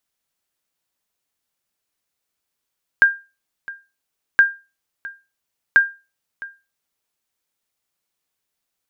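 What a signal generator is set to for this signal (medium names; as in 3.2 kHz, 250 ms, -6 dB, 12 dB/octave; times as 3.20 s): sonar ping 1.6 kHz, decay 0.28 s, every 1.37 s, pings 3, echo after 0.66 s, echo -20 dB -4 dBFS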